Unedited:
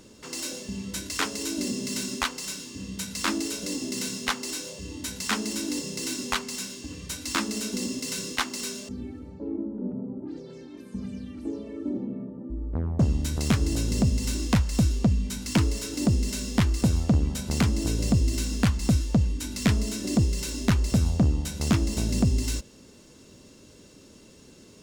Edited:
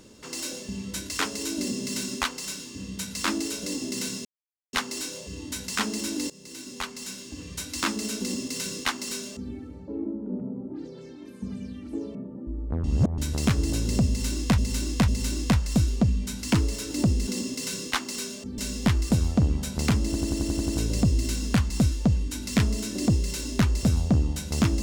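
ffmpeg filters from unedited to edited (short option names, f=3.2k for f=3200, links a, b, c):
-filter_complex "[0:a]asplit=17[a][b][c][d][e][f][g][h][i][j][k][l][m][n][o][p][q];[a]atrim=end=4.25,asetpts=PTS-STARTPTS,afade=t=out:st=4.246:d=0.004:c=hsin,apad=pad_dur=0.48[r];[b]atrim=start=4.25:end=5.82,asetpts=PTS-STARTPTS,afade=t=in:d=0.004:c=hsin,afade=t=out:st=1.566:d=0.004:c=hsin:silence=0.133352[s];[c]atrim=start=5.82:end=11.672,asetpts=PTS-STARTPTS,afade=t=in:d=1.2:silence=0.133352[t];[d]atrim=start=12.178:end=12.872[u];[e]atrim=start=12.868:end=13.212,asetpts=PTS-STARTPTS,areverse[v];[f]atrim=start=13.208:end=14.612[w];[g]atrim=start=14.108:end=14.612[x];[h]atrim=start=14.108:end=16.302[y];[i]atrim=start=7.718:end=9.032[z];[j]atrim=start=16.298:end=17.872[aa];[k]atrim=start=17.778:end=17.872[ab];[l]atrim=start=17.778:end=17.872[ac];[m]atrim=start=17.778:end=17.872[ad];[n]atrim=start=17.778:end=17.872[ae];[o]atrim=start=17.778:end=17.872[af];[p]atrim=start=17.778:end=17.872[ag];[q]atrim=start=17.778[ah];[r][s][t]concat=n=3:v=0:a=1[ai];[ai][u]acrossfade=d=0.004:c1=hsin:c2=hsin[aj];[aj][v]acrossfade=d=0.004:c1=hsin:c2=hsin[ak];[ak][w]acrossfade=d=0.004:c1=hsin:c2=hsin[al];[al][x]acrossfade=d=0.004:c1=hsin:c2=hsin[am];[am][y]acrossfade=d=0.004:c1=hsin:c2=hsin[an];[an][z]acrossfade=d=0.004:c1=hsin:c2=hsin[ao];[ao][aa]acrossfade=d=0.004:c1=hsin:c2=hsin[ap];[ap][ab]acrossfade=d=0.004:c1=hsin:c2=hsin[aq];[aq][ac]acrossfade=d=0.004:c1=hsin:c2=hsin[ar];[ar][ad]acrossfade=d=0.004:c1=hsin:c2=hsin[as];[as][ae]acrossfade=d=0.004:c1=hsin:c2=hsin[at];[at][af]acrossfade=d=0.004:c1=hsin:c2=hsin[au];[au][ag]acrossfade=d=0.004:c1=hsin:c2=hsin[av];[av][ah]acrossfade=d=0.004:c1=hsin:c2=hsin"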